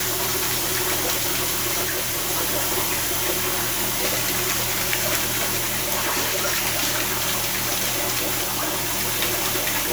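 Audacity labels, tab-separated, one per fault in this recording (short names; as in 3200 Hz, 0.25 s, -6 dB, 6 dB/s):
1.830000	2.300000	clipped -21 dBFS
5.950000	6.490000	clipped -19.5 dBFS
8.430000	8.910000	clipped -20 dBFS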